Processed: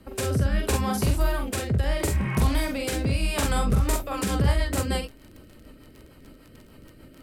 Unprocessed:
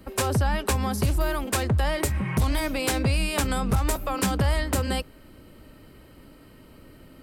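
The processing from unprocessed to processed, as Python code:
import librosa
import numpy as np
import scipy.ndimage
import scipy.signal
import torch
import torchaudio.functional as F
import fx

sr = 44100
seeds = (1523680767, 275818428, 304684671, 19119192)

y = fx.room_early_taps(x, sr, ms=(44, 66), db=(-3.5, -12.5))
y = fx.dmg_crackle(y, sr, seeds[0], per_s=30.0, level_db=-34.0)
y = fx.rotary_switch(y, sr, hz=0.75, then_hz=6.7, switch_at_s=3.43)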